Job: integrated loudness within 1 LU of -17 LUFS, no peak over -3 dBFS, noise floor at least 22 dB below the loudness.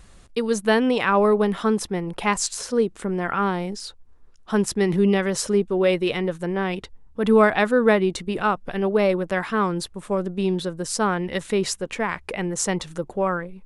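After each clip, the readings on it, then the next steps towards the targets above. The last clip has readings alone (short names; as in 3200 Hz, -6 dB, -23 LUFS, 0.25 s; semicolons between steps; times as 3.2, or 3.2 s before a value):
loudness -22.5 LUFS; peak -5.0 dBFS; loudness target -17.0 LUFS
-> gain +5.5 dB; limiter -3 dBFS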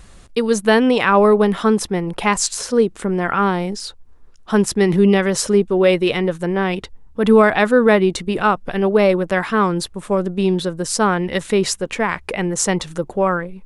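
loudness -17.5 LUFS; peak -3.0 dBFS; noise floor -43 dBFS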